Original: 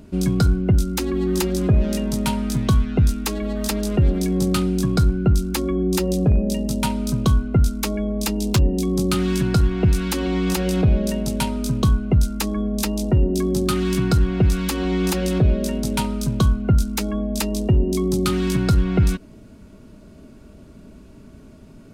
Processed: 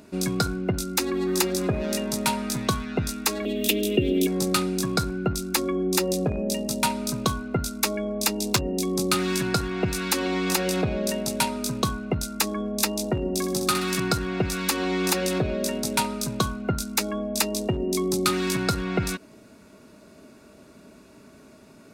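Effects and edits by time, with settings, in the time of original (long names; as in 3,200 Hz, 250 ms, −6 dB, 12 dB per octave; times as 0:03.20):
0:03.45–0:04.27: drawn EQ curve 190 Hz 0 dB, 270 Hz +8 dB, 400 Hz +7 dB, 600 Hz −3 dB, 930 Hz −18 dB, 1,500 Hz −16 dB, 3,100 Hz +14 dB, 4,500 Hz −7 dB, 9,900 Hz −2 dB, 15,000 Hz +6 dB
0:13.20–0:14.00: flutter between parallel walls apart 10.9 metres, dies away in 0.48 s
whole clip: high-pass filter 600 Hz 6 dB per octave; notch filter 3,100 Hz, Q 8.8; level +3 dB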